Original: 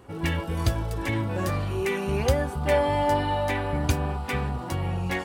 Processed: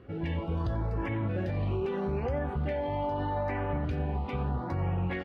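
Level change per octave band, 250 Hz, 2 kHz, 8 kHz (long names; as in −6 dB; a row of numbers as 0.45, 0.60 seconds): −4.0 dB, −10.0 dB, below −30 dB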